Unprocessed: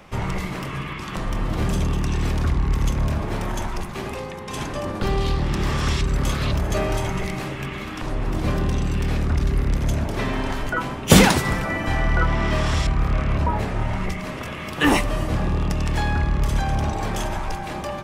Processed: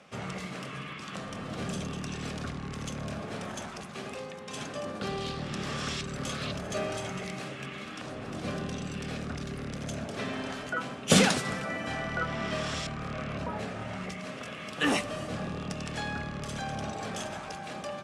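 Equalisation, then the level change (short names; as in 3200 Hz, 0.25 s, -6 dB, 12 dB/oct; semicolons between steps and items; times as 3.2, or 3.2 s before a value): speaker cabinet 190–10000 Hz, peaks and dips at 340 Hz -9 dB, 940 Hz -10 dB, 2000 Hz -4 dB; -5.5 dB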